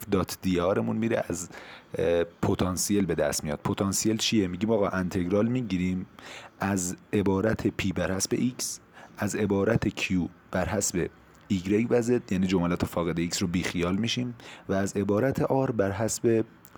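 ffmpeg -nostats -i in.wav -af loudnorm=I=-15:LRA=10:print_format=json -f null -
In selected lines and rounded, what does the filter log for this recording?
"input_i" : "-27.3",
"input_tp" : "-12.2",
"input_lra" : "1.5",
"input_thresh" : "-37.6",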